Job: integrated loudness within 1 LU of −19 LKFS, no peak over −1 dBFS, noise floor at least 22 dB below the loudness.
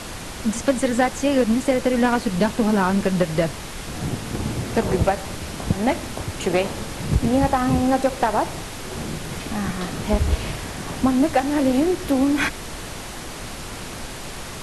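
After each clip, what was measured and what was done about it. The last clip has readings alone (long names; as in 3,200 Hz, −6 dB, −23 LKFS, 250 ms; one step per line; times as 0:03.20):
background noise floor −34 dBFS; target noise floor −44 dBFS; integrated loudness −22.0 LKFS; sample peak −7.5 dBFS; target loudness −19.0 LKFS
→ noise reduction from a noise print 10 dB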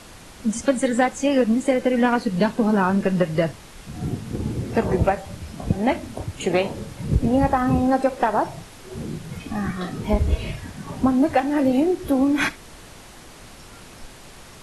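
background noise floor −44 dBFS; integrated loudness −22.0 LKFS; sample peak −8.0 dBFS; target loudness −19.0 LKFS
→ level +3 dB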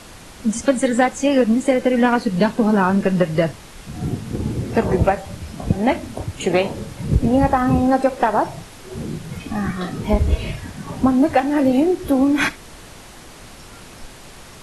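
integrated loudness −19.0 LKFS; sample peak −5.0 dBFS; background noise floor −41 dBFS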